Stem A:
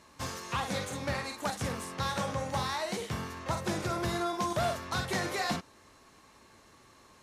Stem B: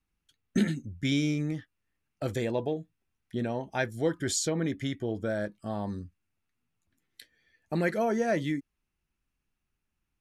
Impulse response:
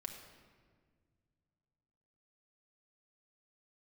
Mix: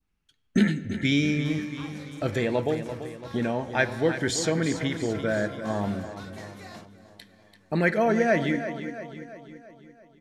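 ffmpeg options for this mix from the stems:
-filter_complex "[0:a]adelay=1250,volume=-14dB,asplit=2[link_01][link_02];[link_02]volume=-17.5dB[link_03];[1:a]highshelf=frequency=8600:gain=-11,volume=1dB,asplit=3[link_04][link_05][link_06];[link_05]volume=-4dB[link_07];[link_06]volume=-8dB[link_08];[2:a]atrim=start_sample=2205[link_09];[link_07][link_09]afir=irnorm=-1:irlink=0[link_10];[link_03][link_08]amix=inputs=2:normalize=0,aecho=0:1:338|676|1014|1352|1690|2028|2366|2704:1|0.55|0.303|0.166|0.0915|0.0503|0.0277|0.0152[link_11];[link_01][link_04][link_10][link_11]amix=inputs=4:normalize=0,adynamicequalizer=threshold=0.00562:dfrequency=2000:dqfactor=1:tfrequency=2000:tqfactor=1:attack=5:release=100:ratio=0.375:range=2.5:mode=boostabove:tftype=bell"

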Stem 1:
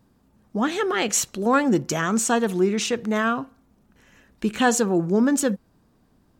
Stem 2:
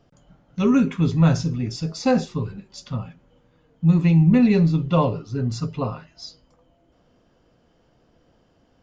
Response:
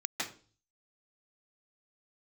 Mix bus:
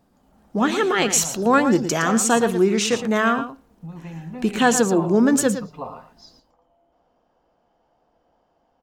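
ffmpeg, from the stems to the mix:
-filter_complex "[0:a]volume=-1dB,asplit=2[link_01][link_02];[link_02]volume=-10.5dB[link_03];[1:a]acompressor=threshold=-22dB:ratio=6,equalizer=frequency=820:width_type=o:width=1.1:gain=14.5,volume=-15dB,asplit=2[link_04][link_05];[link_05]volume=-10.5dB[link_06];[link_03][link_06]amix=inputs=2:normalize=0,aecho=0:1:114:1[link_07];[link_01][link_04][link_07]amix=inputs=3:normalize=0,equalizer=frequency=110:width_type=o:width=0.62:gain=-9.5,dynaudnorm=framelen=110:gausssize=5:maxgain=4.5dB"

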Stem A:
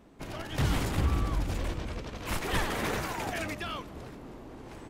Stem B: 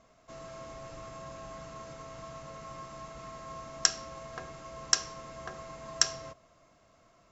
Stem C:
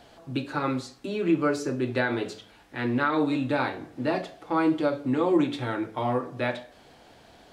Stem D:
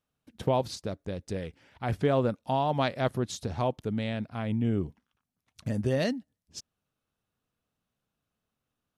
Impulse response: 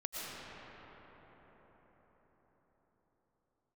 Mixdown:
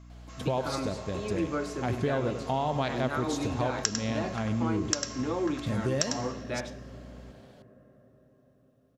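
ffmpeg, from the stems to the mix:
-filter_complex "[1:a]highpass=1100,aeval=exprs='val(0)+0.00282*(sin(2*PI*60*n/s)+sin(2*PI*2*60*n/s)/2+sin(2*PI*3*60*n/s)/3+sin(2*PI*4*60*n/s)/4+sin(2*PI*5*60*n/s)/5)':channel_layout=same,volume=2dB,asplit=3[link_01][link_02][link_03];[link_02]volume=-16dB[link_04];[link_03]volume=-6.5dB[link_05];[2:a]adelay=100,volume=-6.5dB[link_06];[3:a]volume=-0.5dB,asplit=3[link_07][link_08][link_09];[link_08]volume=-15dB[link_10];[link_09]volume=-10.5dB[link_11];[4:a]atrim=start_sample=2205[link_12];[link_04][link_10]amix=inputs=2:normalize=0[link_13];[link_13][link_12]afir=irnorm=-1:irlink=0[link_14];[link_05][link_11]amix=inputs=2:normalize=0,aecho=0:1:99:1[link_15];[link_01][link_06][link_07][link_14][link_15]amix=inputs=5:normalize=0,acompressor=threshold=-24dB:ratio=6"

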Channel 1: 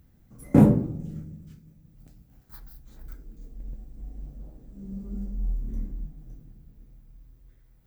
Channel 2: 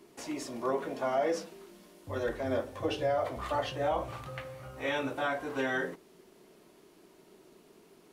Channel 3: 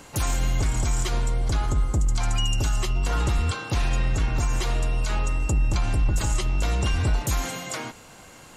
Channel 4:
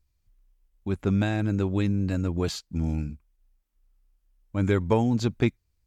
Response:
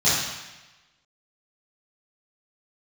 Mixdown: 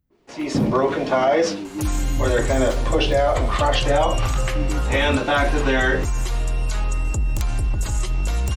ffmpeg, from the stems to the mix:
-filter_complex "[0:a]volume=-15.5dB[link_01];[1:a]lowpass=4800,agate=range=-7dB:threshold=-47dB:ratio=16:detection=peak,adynamicequalizer=threshold=0.00447:dfrequency=2300:dqfactor=0.7:tfrequency=2300:tqfactor=0.7:attack=5:release=100:ratio=0.375:range=3:mode=boostabove:tftype=highshelf,adelay=100,volume=2.5dB[link_02];[2:a]acrossover=split=97|6800[link_03][link_04][link_05];[link_03]acompressor=threshold=-24dB:ratio=4[link_06];[link_04]acompressor=threshold=-36dB:ratio=4[link_07];[link_05]acompressor=threshold=-42dB:ratio=4[link_08];[link_06][link_07][link_08]amix=inputs=3:normalize=0,aeval=exprs='(mod(7.08*val(0)+1,2)-1)/7.08':channel_layout=same,adelay=1650,volume=-7dB[link_09];[3:a]asplit=3[link_10][link_11][link_12];[link_10]bandpass=frequency=300:width_type=q:width=8,volume=0dB[link_13];[link_11]bandpass=frequency=870:width_type=q:width=8,volume=-6dB[link_14];[link_12]bandpass=frequency=2240:width_type=q:width=8,volume=-9dB[link_15];[link_13][link_14][link_15]amix=inputs=3:normalize=0,volume=-9.5dB[link_16];[link_01][link_02][link_09][link_16]amix=inputs=4:normalize=0,dynaudnorm=framelen=280:gausssize=3:maxgain=12dB,alimiter=limit=-9dB:level=0:latency=1:release=59"

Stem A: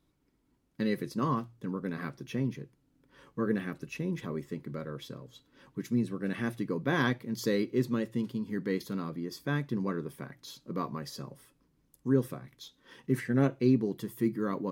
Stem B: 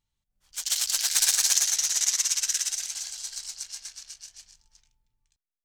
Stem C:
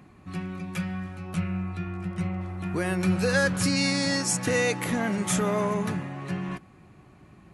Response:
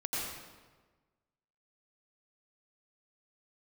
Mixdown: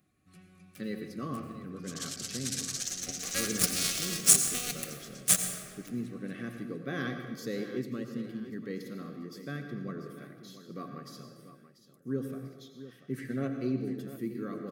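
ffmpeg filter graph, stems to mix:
-filter_complex "[0:a]highpass=99,volume=-9.5dB,asplit=3[link_01][link_02][link_03];[link_02]volume=-7.5dB[link_04];[link_03]volume=-11dB[link_05];[1:a]lowpass=11000,adelay=1300,volume=-13dB[link_06];[2:a]aemphasis=mode=production:type=75fm,aeval=exprs='0.891*(cos(1*acos(clip(val(0)/0.891,-1,1)))-cos(1*PI/2))+0.141*(cos(7*acos(clip(val(0)/0.891,-1,1)))-cos(7*PI/2))':channel_layout=same,volume=-4dB,asplit=2[link_07][link_08];[link_08]volume=-8.5dB[link_09];[3:a]atrim=start_sample=2205[link_10];[link_04][link_09]amix=inputs=2:normalize=0[link_11];[link_11][link_10]afir=irnorm=-1:irlink=0[link_12];[link_05]aecho=0:1:689|1378|2067|2756|3445|4134:1|0.43|0.185|0.0795|0.0342|0.0147[link_13];[link_01][link_06][link_07][link_12][link_13]amix=inputs=5:normalize=0,asuperstop=centerf=930:order=12:qfactor=3.3"

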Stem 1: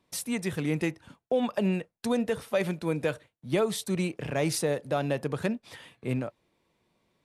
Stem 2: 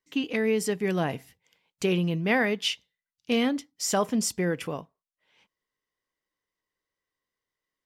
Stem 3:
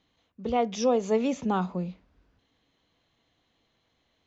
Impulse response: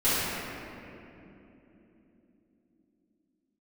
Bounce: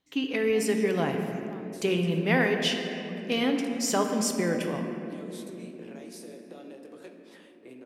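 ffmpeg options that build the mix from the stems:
-filter_complex "[0:a]lowshelf=frequency=220:width_type=q:width=3:gain=-13,acrossover=split=130|3000[link_01][link_02][link_03];[link_02]acompressor=threshold=-30dB:ratio=6[link_04];[link_01][link_04][link_03]amix=inputs=3:normalize=0,flanger=delay=15.5:depth=7.2:speed=2.6,adelay=1600,volume=-7dB,asplit=2[link_05][link_06];[link_06]volume=-24dB[link_07];[1:a]equalizer=frequency=66:width_type=o:width=2.7:gain=-4,volume=-2dB,asplit=2[link_08][link_09];[link_09]volume=-18dB[link_10];[2:a]volume=-9dB[link_11];[link_05][link_11]amix=inputs=2:normalize=0,acompressor=threshold=-45dB:ratio=6,volume=0dB[link_12];[3:a]atrim=start_sample=2205[link_13];[link_07][link_10]amix=inputs=2:normalize=0[link_14];[link_14][link_13]afir=irnorm=-1:irlink=0[link_15];[link_08][link_12][link_15]amix=inputs=3:normalize=0"

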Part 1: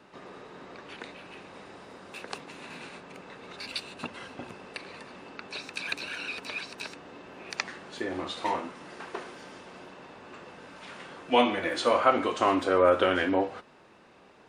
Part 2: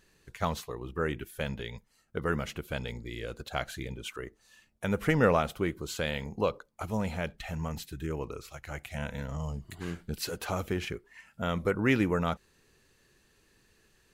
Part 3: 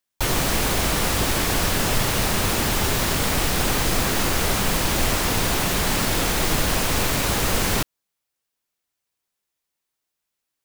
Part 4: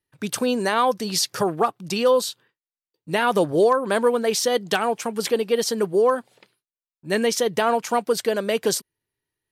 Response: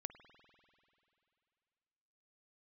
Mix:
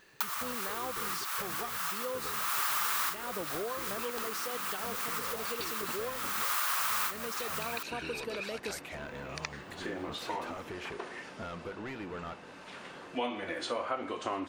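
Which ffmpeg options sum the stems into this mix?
-filter_complex "[0:a]adelay=1850,volume=-2.5dB[link_01];[1:a]acompressor=threshold=-37dB:ratio=6,asplit=2[link_02][link_03];[link_03]highpass=frequency=720:poles=1,volume=24dB,asoftclip=type=tanh:threshold=-23.5dB[link_04];[link_02][link_04]amix=inputs=2:normalize=0,lowpass=frequency=2200:poles=1,volume=-6dB,volume=-7.5dB[link_05];[2:a]highpass=frequency=1200:width_type=q:width=4.2,highshelf=frequency=12000:gain=12,volume=0dB[link_06];[3:a]volume=-15dB,asplit=2[link_07][link_08];[link_08]apad=whole_len=469656[link_09];[link_06][link_09]sidechaincompress=threshold=-52dB:ratio=5:attack=32:release=298[link_10];[link_01][link_05][link_10][link_07]amix=inputs=4:normalize=0,acompressor=threshold=-35dB:ratio=2.5"

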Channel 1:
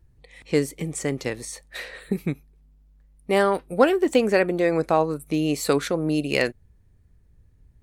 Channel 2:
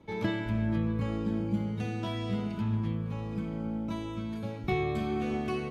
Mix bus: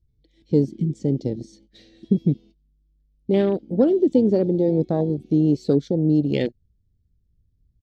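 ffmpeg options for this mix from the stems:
ffmpeg -i stem1.wav -i stem2.wav -filter_complex "[0:a]bandreject=frequency=2600:width=5.3,acontrast=39,volume=2.5dB,asplit=2[link_01][link_02];[1:a]lowshelf=frequency=220:width_type=q:width=3:gain=-11,acompressor=threshold=-35dB:ratio=6,crystalizer=i=3.5:c=0,volume=3dB[link_03];[link_02]apad=whole_len=251627[link_04];[link_03][link_04]sidechaingate=range=-33dB:threshold=-38dB:ratio=16:detection=peak[link_05];[link_01][link_05]amix=inputs=2:normalize=0,afwtdn=0.158,firequalizer=gain_entry='entry(210,0);entry(1100,-26);entry(3300,-3);entry(5400,-2);entry(9600,-25)':delay=0.05:min_phase=1" out.wav

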